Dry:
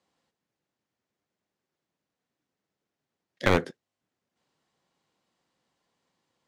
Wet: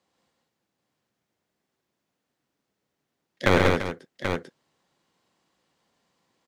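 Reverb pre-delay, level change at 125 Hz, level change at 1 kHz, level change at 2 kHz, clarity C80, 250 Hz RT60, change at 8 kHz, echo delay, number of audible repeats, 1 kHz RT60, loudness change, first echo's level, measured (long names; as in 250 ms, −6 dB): no reverb audible, +5.5 dB, +5.5 dB, +5.5 dB, no reverb audible, no reverb audible, +5.5 dB, 104 ms, 5, no reverb audible, +1.5 dB, −6.0 dB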